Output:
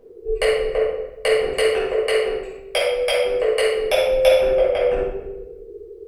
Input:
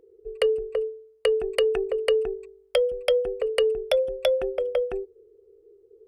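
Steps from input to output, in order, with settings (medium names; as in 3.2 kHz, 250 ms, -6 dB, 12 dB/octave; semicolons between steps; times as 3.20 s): 1.43–3.83 s: bass shelf 260 Hz -11 dB; compression, threshold -30 dBFS, peak gain reduction 11.5 dB; simulated room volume 440 m³, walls mixed, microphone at 5.6 m; trim +3 dB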